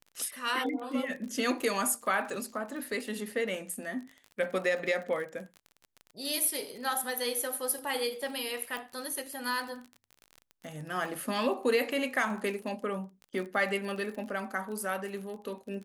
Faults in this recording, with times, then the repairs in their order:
crackle 35/s -38 dBFS
8.77 pop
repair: de-click

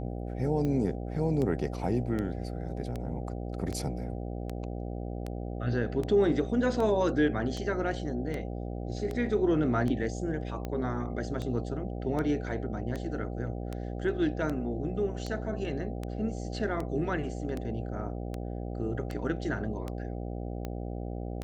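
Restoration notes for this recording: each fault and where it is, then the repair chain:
buzz 60 Hz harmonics 13 -36 dBFS
tick 78 rpm -22 dBFS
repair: de-click; de-hum 60 Hz, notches 13

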